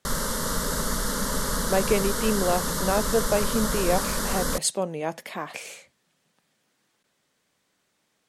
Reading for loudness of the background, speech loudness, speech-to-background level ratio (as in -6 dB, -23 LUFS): -27.0 LUFS, -27.5 LUFS, -0.5 dB